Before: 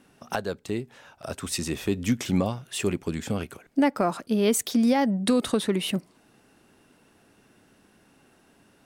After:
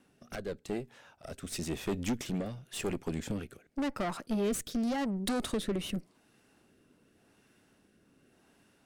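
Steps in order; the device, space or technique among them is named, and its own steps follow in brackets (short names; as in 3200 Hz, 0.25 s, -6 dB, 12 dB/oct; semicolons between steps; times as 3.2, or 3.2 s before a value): overdriven rotary cabinet (tube stage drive 26 dB, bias 0.75; rotary speaker horn 0.9 Hz)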